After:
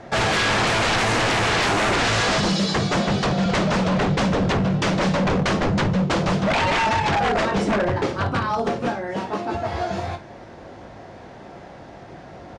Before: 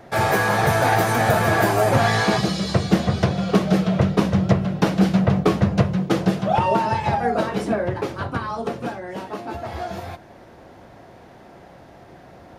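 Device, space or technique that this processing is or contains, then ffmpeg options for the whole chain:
synthesiser wavefolder: -filter_complex "[0:a]asettb=1/sr,asplit=3[s0][s1][s2];[s0]atrim=end=2.484[s3];[s1]atrim=start=2.48:end=3.46,asetpts=PTS-STARTPTS,afade=t=in:d=0.004:c=qsin,afade=t=out:st=0.976:d=0.004:c=qsin,highpass=f=120:w=0.5412,highpass=f=120:w=1.3066[s4];[s2]atrim=start=3.456[s5];[s3][s4]acrossfade=d=0.004:c1=hsin:c2=qsin[s6];[s6][s5]acrossfade=d=0.004:c1=qsin:c2=hsin,aecho=1:1:20|54:0.335|0.211,aeval=exprs='0.112*(abs(mod(val(0)/0.112+3,4)-2)-1)':c=same,lowpass=f=7900:w=0.5412,lowpass=f=7900:w=1.3066,volume=1.58"

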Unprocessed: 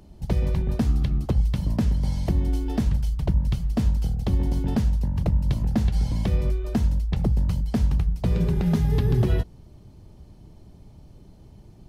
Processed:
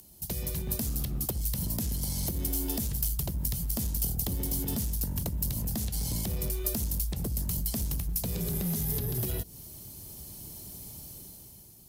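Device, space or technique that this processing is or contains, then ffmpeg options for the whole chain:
FM broadcast chain: -filter_complex "[0:a]highpass=f=73:p=1,dynaudnorm=f=120:g=13:m=3.55,acrossover=split=680|1500[s0][s1][s2];[s0]acompressor=threshold=0.178:ratio=4[s3];[s1]acompressor=threshold=0.00501:ratio=4[s4];[s2]acompressor=threshold=0.00631:ratio=4[s5];[s3][s4][s5]amix=inputs=3:normalize=0,aemphasis=mode=production:type=75fm,alimiter=limit=0.188:level=0:latency=1:release=82,asoftclip=type=hard:threshold=0.119,lowpass=f=15000:w=0.5412,lowpass=f=15000:w=1.3066,aemphasis=mode=production:type=75fm,volume=0.376"

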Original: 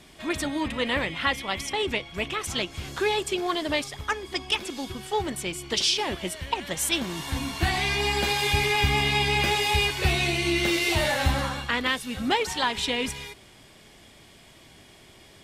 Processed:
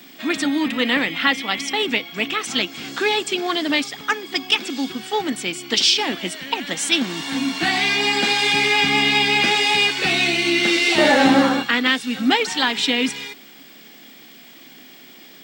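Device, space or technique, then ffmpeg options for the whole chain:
old television with a line whistle: -filter_complex "[0:a]highpass=f=200:w=0.5412,highpass=f=200:w=1.3066,equalizer=f=270:t=q:w=4:g=5,equalizer=f=380:t=q:w=4:g=-6,equalizer=f=590:t=q:w=4:g=-8,equalizer=f=1000:t=q:w=4:g=-7,equalizer=f=6500:t=q:w=4:g=-3,lowpass=f=7900:w=0.5412,lowpass=f=7900:w=1.3066,aeval=exprs='val(0)+0.002*sin(2*PI*15734*n/s)':c=same,asettb=1/sr,asplit=3[s0][s1][s2];[s0]atrim=end=10.984[s3];[s1]atrim=start=10.98:end=11.63,asetpts=PTS-STARTPTS,afade=t=in:d=0.004:c=qsin,afade=t=out:st=0.646:d=0.004:c=qsin,equalizer=f=440:w=0.63:g=12.5[s4];[s2]atrim=start=11.626[s5];[s3][s4]acrossfade=d=0.004:c1=hsin:c2=qsin[s6];[s6][s5]acrossfade=d=0.004:c1=qsin:c2=hsin,volume=2.51"

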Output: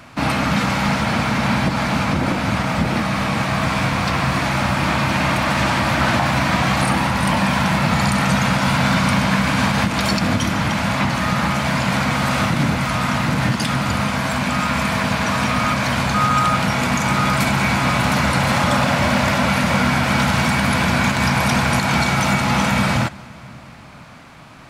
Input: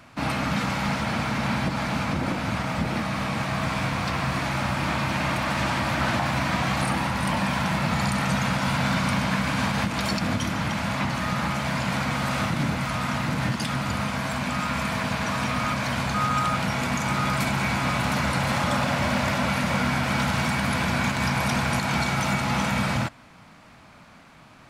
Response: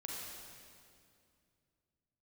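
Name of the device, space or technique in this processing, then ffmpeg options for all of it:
ducked reverb: -filter_complex "[0:a]asplit=3[s0][s1][s2];[1:a]atrim=start_sample=2205[s3];[s1][s3]afir=irnorm=-1:irlink=0[s4];[s2]apad=whole_len=1088983[s5];[s4][s5]sidechaincompress=threshold=0.0447:ratio=8:attack=16:release=1130,volume=0.316[s6];[s0][s6]amix=inputs=2:normalize=0,volume=2.11"

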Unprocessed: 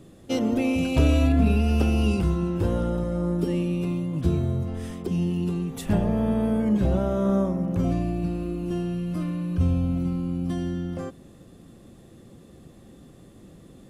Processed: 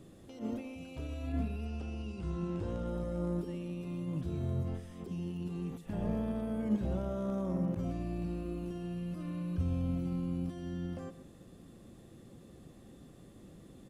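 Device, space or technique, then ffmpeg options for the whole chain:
de-esser from a sidechain: -filter_complex "[0:a]asettb=1/sr,asplit=3[s0][s1][s2];[s0]atrim=end=1.654[s3];[s1]atrim=start=1.65:end=2.87,asetpts=PTS-STARTPTS,afade=t=in:d=0.004:c=qsin,afade=t=out:st=1.216:d=0.004:c=qsin,lowpass=f=8500:w=0.5412,lowpass=f=8500:w=1.3066[s4];[s2]atrim=start=2.866[s5];[s3][s4]acrossfade=d=0.004:c1=hsin:c2=qsin[s6];[s6][s5]acrossfade=d=0.004:c1=qsin:c2=hsin,asplit=2[s7][s8];[s8]highpass=4300,apad=whole_len=612910[s9];[s7][s9]sidechaincompress=threshold=0.00126:ratio=4:attack=0.64:release=75,aecho=1:1:124:0.211,volume=0.531"

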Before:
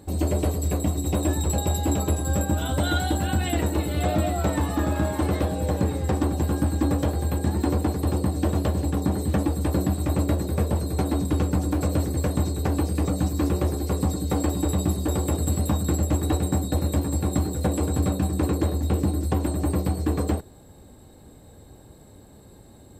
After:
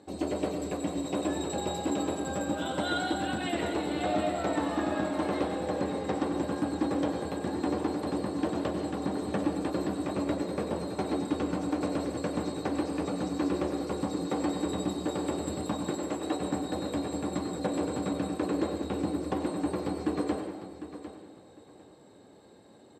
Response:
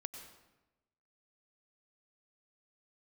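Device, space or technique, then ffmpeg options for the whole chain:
supermarket ceiling speaker: -filter_complex "[0:a]asettb=1/sr,asplit=3[s0][s1][s2];[s0]atrim=end=15.904[s3];[s1]atrim=start=15.9:end=16.4,asetpts=PTS-STARTPTS,afade=t=in:d=0.004:c=qsin,afade=t=out:st=0.496:d=0.004:c=qsin,highpass=260[s4];[s2]atrim=start=16.396[s5];[s3][s4]acrossfade=d=0.004:c1=hsin:c2=qsin[s6];[s6][s5]acrossfade=d=0.004:c1=qsin:c2=hsin,highpass=240,lowpass=5500[s7];[1:a]atrim=start_sample=2205[s8];[s7][s8]afir=irnorm=-1:irlink=0,aecho=1:1:752|1504|2256:0.237|0.0498|0.0105"

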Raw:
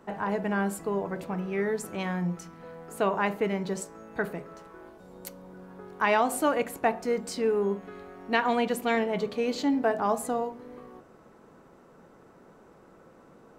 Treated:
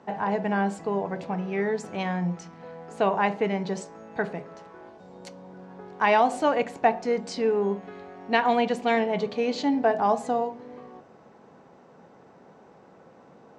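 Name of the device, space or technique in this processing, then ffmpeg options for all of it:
car door speaker: -af "highpass=98,equalizer=f=330:t=q:w=4:g=-4,equalizer=f=780:t=q:w=4:g=5,equalizer=f=1300:t=q:w=4:g=-5,lowpass=f=6500:w=0.5412,lowpass=f=6500:w=1.3066,volume=1.33"

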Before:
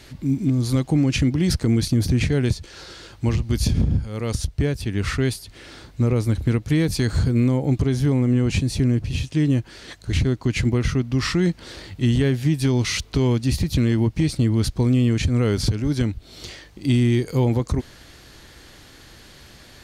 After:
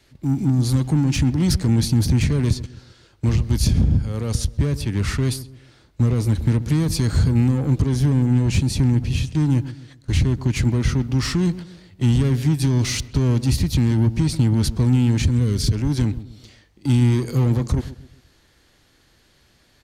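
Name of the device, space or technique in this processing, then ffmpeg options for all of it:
one-band saturation: -filter_complex "[0:a]agate=range=0.178:threshold=0.0251:ratio=16:detection=peak,acrossover=split=240|4800[s0][s1][s2];[s1]asoftclip=type=tanh:threshold=0.0282[s3];[s0][s3][s2]amix=inputs=3:normalize=0,asettb=1/sr,asplit=3[s4][s5][s6];[s4]atrim=end=15.314[s7];[s5]atrim=start=15.31:end=15.73,asetpts=PTS-STARTPTS,afade=t=in:d=0.004:c=qsin,afade=t=out:st=0.416:d=0.004:c=qsin,equalizer=f=860:w=1.1:g=-10[s8];[s6]atrim=start=15.726[s9];[s7][s8]acrossfade=d=0.004:c1=hsin:c2=qsin[s10];[s10][s9]acrossfade=d=0.004:c1=qsin:c2=hsin,asplit=2[s11][s12];[s12]adelay=131,lowpass=f=820:p=1,volume=0.2,asplit=2[s13][s14];[s14]adelay=131,lowpass=f=820:p=1,volume=0.39,asplit=2[s15][s16];[s16]adelay=131,lowpass=f=820:p=1,volume=0.39,asplit=2[s17][s18];[s18]adelay=131,lowpass=f=820:p=1,volume=0.39[s19];[s11][s13][s15][s17][s19]amix=inputs=5:normalize=0,volume=1.41"

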